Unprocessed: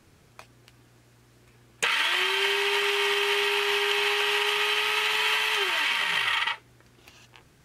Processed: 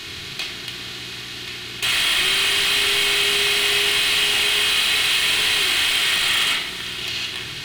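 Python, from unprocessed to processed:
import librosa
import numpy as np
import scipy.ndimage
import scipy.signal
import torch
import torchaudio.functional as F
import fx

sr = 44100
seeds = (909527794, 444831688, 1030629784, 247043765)

p1 = fx.bin_compress(x, sr, power=0.6)
p2 = fx.graphic_eq(p1, sr, hz=(500, 1000, 4000, 8000), db=(-10, -6, 11, -4))
p3 = fx.over_compress(p2, sr, threshold_db=-24.0, ratio=-1.0)
p4 = p2 + (p3 * 10.0 ** (-2.0 / 20.0))
p5 = np.clip(p4, -10.0 ** (-20.0 / 20.0), 10.0 ** (-20.0 / 20.0))
p6 = p5 + fx.echo_diffused(p5, sr, ms=520, feedback_pct=48, wet_db=-15.0, dry=0)
y = fx.room_shoebox(p6, sr, seeds[0], volume_m3=2800.0, walls='furnished', distance_m=3.3)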